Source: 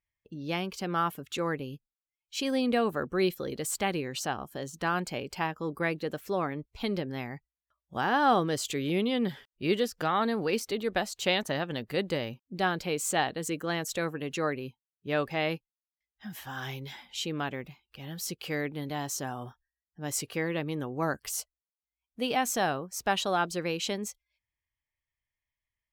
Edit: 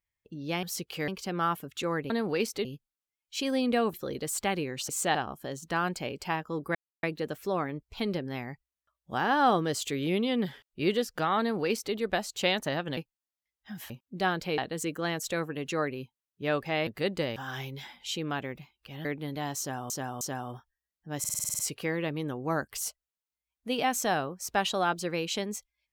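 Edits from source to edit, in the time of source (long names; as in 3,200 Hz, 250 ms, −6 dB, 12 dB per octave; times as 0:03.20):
0:02.94–0:03.31: remove
0:05.86: splice in silence 0.28 s
0:10.23–0:10.78: duplicate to 0:01.65
0:11.80–0:12.29: swap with 0:15.52–0:16.45
0:12.97–0:13.23: move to 0:04.26
0:18.14–0:18.59: move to 0:00.63
0:19.13–0:19.44: repeat, 3 plays
0:20.11: stutter 0.05 s, 9 plays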